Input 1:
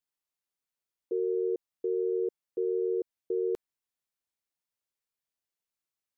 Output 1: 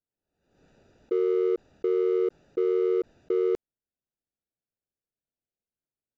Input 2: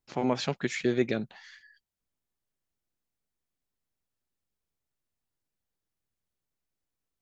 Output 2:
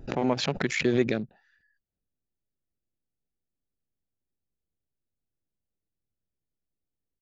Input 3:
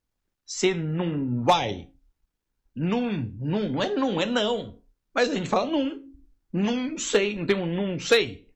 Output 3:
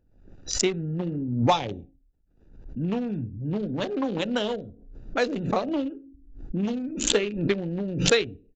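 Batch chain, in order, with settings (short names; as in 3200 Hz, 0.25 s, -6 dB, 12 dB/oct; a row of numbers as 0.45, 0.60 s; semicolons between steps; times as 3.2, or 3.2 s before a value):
Wiener smoothing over 41 samples; downsampling 16000 Hz; backwards sustainer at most 74 dB/s; match loudness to -27 LUFS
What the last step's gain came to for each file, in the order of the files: +6.0, +1.5, -1.5 dB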